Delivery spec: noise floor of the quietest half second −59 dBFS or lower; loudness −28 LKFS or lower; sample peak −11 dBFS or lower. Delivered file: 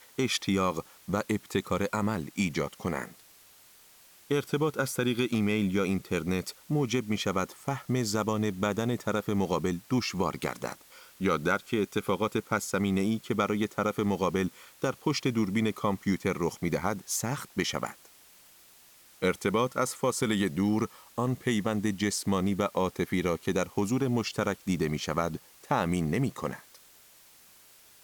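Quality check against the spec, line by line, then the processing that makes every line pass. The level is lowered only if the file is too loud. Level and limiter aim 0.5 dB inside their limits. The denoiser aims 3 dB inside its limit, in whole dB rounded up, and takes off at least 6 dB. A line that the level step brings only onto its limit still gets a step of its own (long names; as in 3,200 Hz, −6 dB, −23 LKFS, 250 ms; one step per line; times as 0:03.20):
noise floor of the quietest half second −57 dBFS: out of spec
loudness −30.0 LKFS: in spec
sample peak −13.0 dBFS: in spec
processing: broadband denoise 6 dB, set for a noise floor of −57 dBFS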